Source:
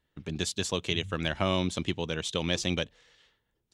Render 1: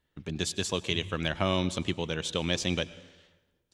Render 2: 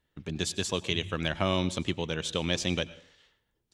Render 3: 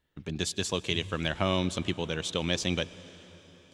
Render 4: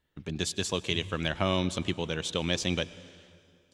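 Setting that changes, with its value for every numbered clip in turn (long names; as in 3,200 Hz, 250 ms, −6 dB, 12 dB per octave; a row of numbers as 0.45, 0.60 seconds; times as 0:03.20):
dense smooth reverb, RT60: 1.2, 0.53, 5.3, 2.5 seconds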